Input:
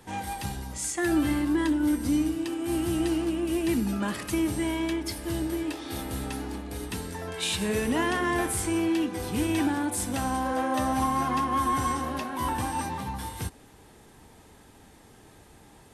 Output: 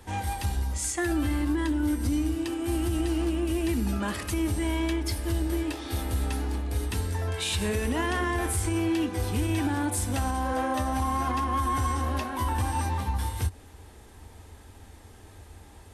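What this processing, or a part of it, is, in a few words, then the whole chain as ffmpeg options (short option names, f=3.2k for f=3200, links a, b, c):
car stereo with a boomy subwoofer: -af "lowshelf=f=110:t=q:w=3:g=6.5,alimiter=limit=-19.5dB:level=0:latency=1:release=92,volume=1dB"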